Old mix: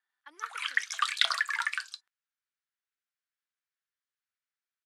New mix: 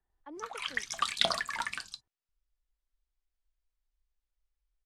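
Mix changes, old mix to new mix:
speech: add three-band isolator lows -15 dB, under 440 Hz, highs -15 dB, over 2.4 kHz; master: remove resonant high-pass 1.5 kHz, resonance Q 2.4

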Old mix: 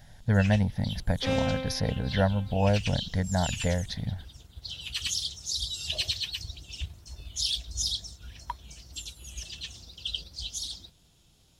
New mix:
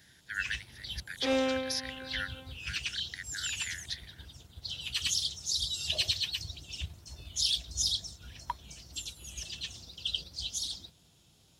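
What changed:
speech: add steep high-pass 1.4 kHz 96 dB/octave; first sound: add high-pass 75 Hz

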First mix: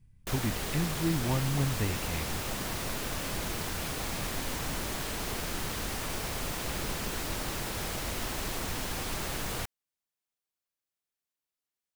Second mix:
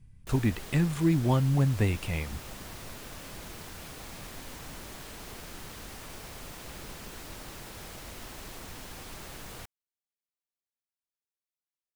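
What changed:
speech +5.5 dB; background -9.0 dB

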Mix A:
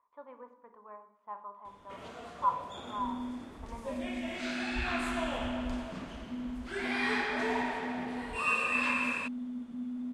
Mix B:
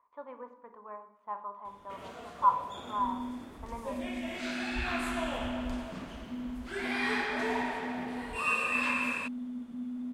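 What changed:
speech +4.5 dB; first sound: remove low-pass 10 kHz 12 dB/octave

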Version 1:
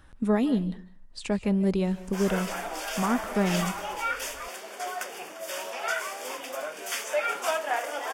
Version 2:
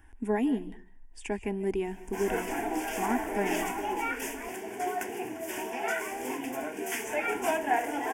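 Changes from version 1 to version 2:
background: remove Bessel high-pass 820 Hz, order 2; master: add static phaser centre 830 Hz, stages 8

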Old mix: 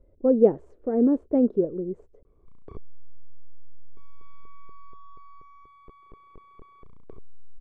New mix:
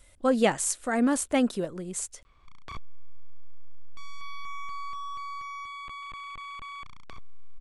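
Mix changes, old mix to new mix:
background: add tape spacing loss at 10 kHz 27 dB; master: remove resonant low-pass 420 Hz, resonance Q 3.8

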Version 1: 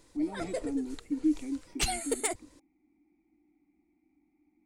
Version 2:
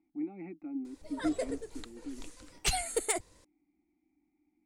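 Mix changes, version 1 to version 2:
speech -5.0 dB; background: entry +0.85 s

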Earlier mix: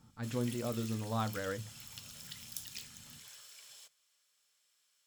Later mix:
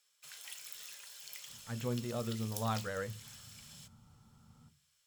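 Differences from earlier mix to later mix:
speech: entry +1.50 s; master: add peaking EQ 290 Hz -10 dB 0.31 oct

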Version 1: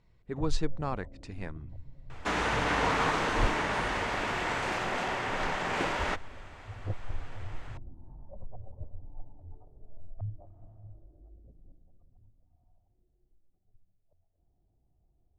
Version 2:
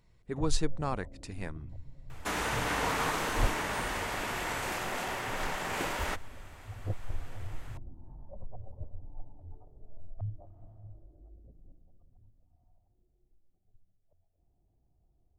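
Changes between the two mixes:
second sound -4.0 dB; master: remove distance through air 98 m

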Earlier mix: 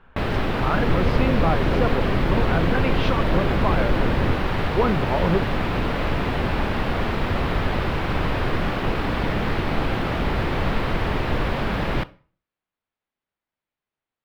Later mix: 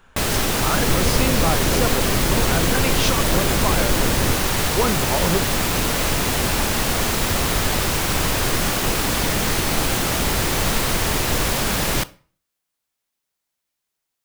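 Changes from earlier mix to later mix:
speech: send off; master: remove distance through air 410 m

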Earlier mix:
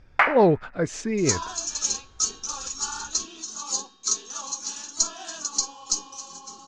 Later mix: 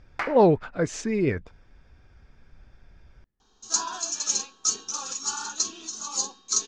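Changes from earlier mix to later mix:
first sound: add high-order bell 1.3 kHz -11.5 dB 2.9 oct; second sound: entry +2.45 s

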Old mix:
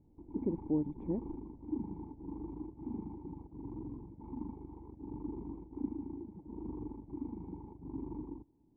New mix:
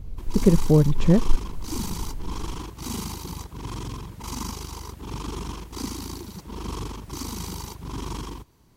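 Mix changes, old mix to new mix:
speech: add tilt EQ -4.5 dB/octave; master: remove cascade formant filter u

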